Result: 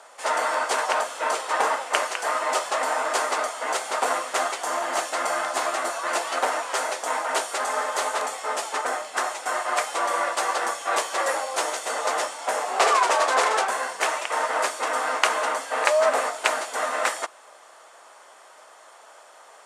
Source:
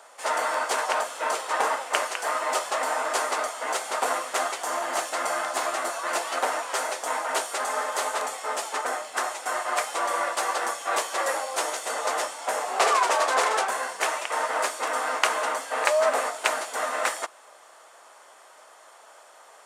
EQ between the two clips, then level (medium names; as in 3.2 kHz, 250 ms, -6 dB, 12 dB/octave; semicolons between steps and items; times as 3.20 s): Bessel low-pass 11 kHz, order 2; +2.0 dB